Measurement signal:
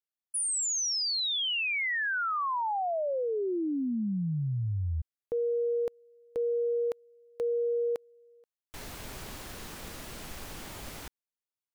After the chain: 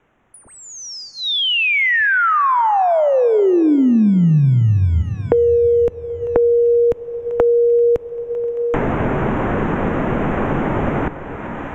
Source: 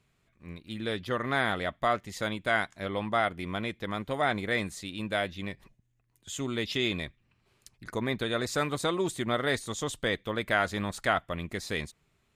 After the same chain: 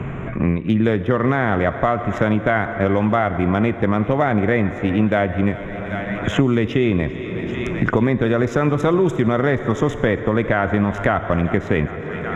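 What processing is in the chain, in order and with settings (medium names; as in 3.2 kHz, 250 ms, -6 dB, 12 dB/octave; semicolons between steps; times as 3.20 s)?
local Wiener filter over 9 samples; boxcar filter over 10 samples; bass shelf 490 Hz +5.5 dB; thinning echo 391 ms, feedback 70%, high-pass 740 Hz, level -21 dB; plate-style reverb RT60 2.4 s, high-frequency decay 0.8×, DRR 13.5 dB; loudness maximiser +18.5 dB; three bands compressed up and down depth 100%; trim -6 dB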